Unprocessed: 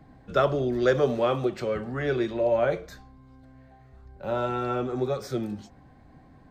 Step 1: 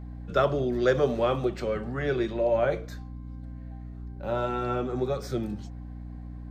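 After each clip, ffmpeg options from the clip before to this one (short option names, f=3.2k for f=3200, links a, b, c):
-af "aeval=exprs='val(0)+0.0141*(sin(2*PI*60*n/s)+sin(2*PI*2*60*n/s)/2+sin(2*PI*3*60*n/s)/3+sin(2*PI*4*60*n/s)/4+sin(2*PI*5*60*n/s)/5)':c=same,volume=-1dB"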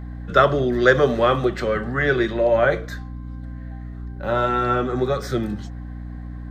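-af "superequalizer=10b=1.78:11b=2.51:13b=1.41,volume=6.5dB"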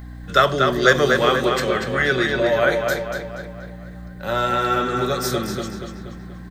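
-filter_complex "[0:a]crystalizer=i=5.5:c=0,asplit=2[a][b];[b]adelay=239,lowpass=f=4.6k:p=1,volume=-4dB,asplit=2[c][d];[d]adelay=239,lowpass=f=4.6k:p=1,volume=0.52,asplit=2[e][f];[f]adelay=239,lowpass=f=4.6k:p=1,volume=0.52,asplit=2[g][h];[h]adelay=239,lowpass=f=4.6k:p=1,volume=0.52,asplit=2[i][j];[j]adelay=239,lowpass=f=4.6k:p=1,volume=0.52,asplit=2[k][l];[l]adelay=239,lowpass=f=4.6k:p=1,volume=0.52,asplit=2[m][n];[n]adelay=239,lowpass=f=4.6k:p=1,volume=0.52[o];[c][e][g][i][k][m][o]amix=inputs=7:normalize=0[p];[a][p]amix=inputs=2:normalize=0,volume=-3dB"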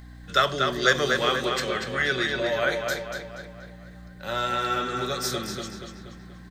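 -af "equalizer=f=4.6k:w=0.41:g=7.5,volume=-8.5dB"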